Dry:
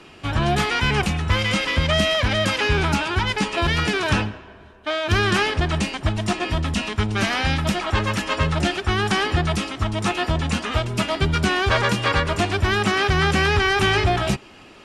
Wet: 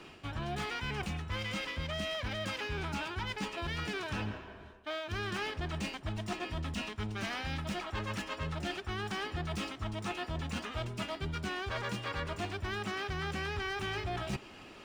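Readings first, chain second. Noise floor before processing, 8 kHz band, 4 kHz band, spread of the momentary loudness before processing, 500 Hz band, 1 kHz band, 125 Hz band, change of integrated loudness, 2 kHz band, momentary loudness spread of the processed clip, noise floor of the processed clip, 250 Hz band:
−45 dBFS, −17.0 dB, −16.0 dB, 6 LU, −16.5 dB, −16.0 dB, −16.5 dB, −16.5 dB, −16.5 dB, 3 LU, −52 dBFS, −16.0 dB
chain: running median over 3 samples
reversed playback
downward compressor 6 to 1, threshold −29 dBFS, peak gain reduction 14.5 dB
reversed playback
level −5.5 dB

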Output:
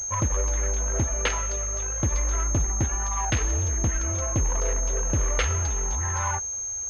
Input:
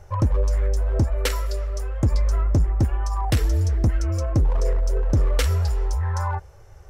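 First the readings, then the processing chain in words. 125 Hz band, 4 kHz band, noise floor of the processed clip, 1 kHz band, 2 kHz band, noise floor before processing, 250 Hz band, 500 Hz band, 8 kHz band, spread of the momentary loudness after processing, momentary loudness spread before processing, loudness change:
−6.0 dB, −2.0 dB, −32 dBFS, +0.5 dB, +3.0 dB, −46 dBFS, −4.5 dB, −3.0 dB, +16.5 dB, 2 LU, 5 LU, −2.0 dB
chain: harmonic generator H 8 −24 dB, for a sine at −14 dBFS
tilt shelving filter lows −6 dB
switching amplifier with a slow clock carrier 6,400 Hz

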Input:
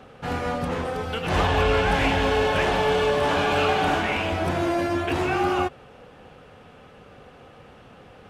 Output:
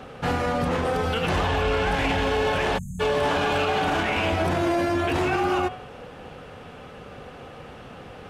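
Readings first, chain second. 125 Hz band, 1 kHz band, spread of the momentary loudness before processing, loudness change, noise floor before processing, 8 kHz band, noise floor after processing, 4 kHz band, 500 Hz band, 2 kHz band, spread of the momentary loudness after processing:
0.0 dB, −1.0 dB, 7 LU, −1.0 dB, −49 dBFS, 0.0 dB, −43 dBFS, −1.0 dB, −1.0 dB, −1.0 dB, 19 LU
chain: hum removal 105.5 Hz, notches 34
brickwall limiter −22 dBFS, peak gain reduction 11 dB
time-frequency box erased 0:02.78–0:03.00, 240–6,200 Hz
level +6.5 dB

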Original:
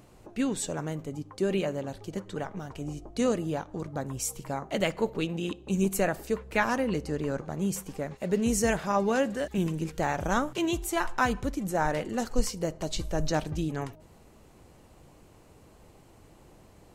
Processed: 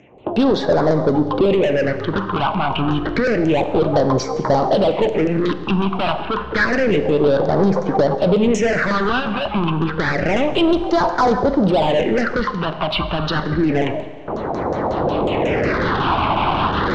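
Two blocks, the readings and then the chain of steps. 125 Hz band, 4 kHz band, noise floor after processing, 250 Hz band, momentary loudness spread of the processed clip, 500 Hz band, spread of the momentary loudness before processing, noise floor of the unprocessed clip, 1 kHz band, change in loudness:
+12.0 dB, +13.5 dB, −27 dBFS, +12.0 dB, 5 LU, +14.0 dB, 10 LU, −56 dBFS, +14.0 dB, +12.0 dB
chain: adaptive Wiener filter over 9 samples
camcorder AGC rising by 12 dB per second
noise gate with hold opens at −37 dBFS
dynamic equaliser 580 Hz, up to +5 dB, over −41 dBFS, Q 1.5
auto-filter low-pass saw down 5.5 Hz 480–6,700 Hz
mid-hump overdrive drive 31 dB, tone 5,900 Hz, clips at −6 dBFS
all-pass phaser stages 6, 0.29 Hz, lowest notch 480–2,700 Hz
high-frequency loss of the air 130 metres
four-comb reverb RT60 1.3 s, combs from 30 ms, DRR 11.5 dB
multiband upward and downward compressor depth 40%

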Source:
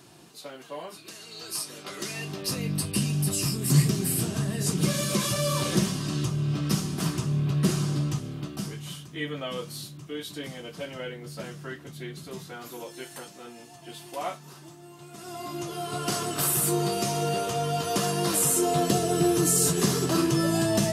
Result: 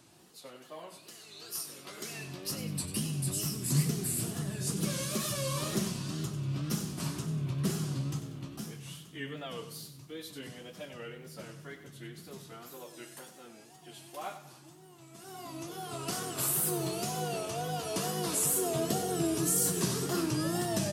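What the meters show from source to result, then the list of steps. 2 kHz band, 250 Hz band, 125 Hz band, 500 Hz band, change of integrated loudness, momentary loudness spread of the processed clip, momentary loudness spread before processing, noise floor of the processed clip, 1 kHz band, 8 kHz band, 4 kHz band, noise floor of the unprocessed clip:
−7.0 dB, −7.5 dB, −7.5 dB, −7.5 dB, −6.5 dB, 18 LU, 18 LU, −55 dBFS, −7.5 dB, −5.0 dB, −7.0 dB, −48 dBFS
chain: tape wow and flutter 130 cents
high-shelf EQ 8,500 Hz +5 dB
on a send: repeating echo 95 ms, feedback 38%, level −11 dB
on the sum: level −8 dB

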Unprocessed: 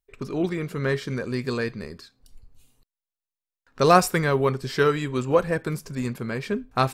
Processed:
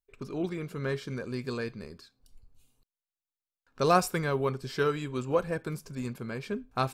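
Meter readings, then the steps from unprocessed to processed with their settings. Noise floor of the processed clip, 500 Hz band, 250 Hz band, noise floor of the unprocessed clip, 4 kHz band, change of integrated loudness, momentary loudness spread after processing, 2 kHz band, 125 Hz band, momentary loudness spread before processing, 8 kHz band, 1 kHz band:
below −85 dBFS, −7.0 dB, −7.0 dB, below −85 dBFS, −7.0 dB, −7.0 dB, 13 LU, −8.0 dB, −7.0 dB, 13 LU, −7.0 dB, −7.0 dB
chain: notch filter 1,900 Hz, Q 8.5
level −7 dB

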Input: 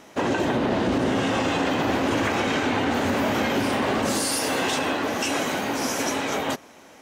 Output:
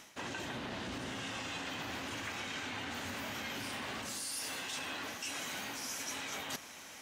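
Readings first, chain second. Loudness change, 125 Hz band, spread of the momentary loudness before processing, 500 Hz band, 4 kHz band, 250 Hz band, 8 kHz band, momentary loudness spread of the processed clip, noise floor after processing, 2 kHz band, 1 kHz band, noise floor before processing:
−16.0 dB, −18.0 dB, 3 LU, −22.5 dB, −11.0 dB, −21.5 dB, −10.5 dB, 3 LU, −51 dBFS, −13.0 dB, −18.0 dB, −49 dBFS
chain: guitar amp tone stack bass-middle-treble 5-5-5
reversed playback
downward compressor 6 to 1, threshold −50 dBFS, peak gain reduction 18.5 dB
reversed playback
level +10.5 dB

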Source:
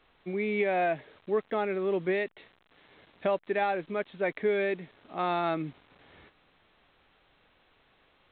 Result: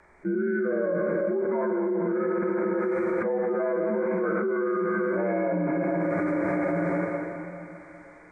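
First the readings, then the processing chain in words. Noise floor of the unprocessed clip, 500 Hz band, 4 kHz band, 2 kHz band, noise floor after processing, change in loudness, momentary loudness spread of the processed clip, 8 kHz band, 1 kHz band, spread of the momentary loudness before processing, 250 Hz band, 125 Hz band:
−67 dBFS, +5.5 dB, below −20 dB, +2.5 dB, −49 dBFS, +4.0 dB, 5 LU, can't be measured, −0.5 dB, 9 LU, +10.5 dB, +8.5 dB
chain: partials spread apart or drawn together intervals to 81%
treble cut that deepens with the level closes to 1,800 Hz, closed at −24 dBFS
noise gate −60 dBFS, range −24 dB
high-shelf EQ 3,200 Hz +8.5 dB
harmonic and percussive parts rebalanced percussive −10 dB
brickwall limiter −23.5 dBFS, peak gain reduction 5 dB
rotating-speaker cabinet horn 0.6 Hz
feedback echo with a high-pass in the loop 204 ms, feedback 63%, high-pass 330 Hz, level −12 dB
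dense smooth reverb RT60 2.7 s, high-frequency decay 0.95×, DRR 2 dB
envelope flattener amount 100%

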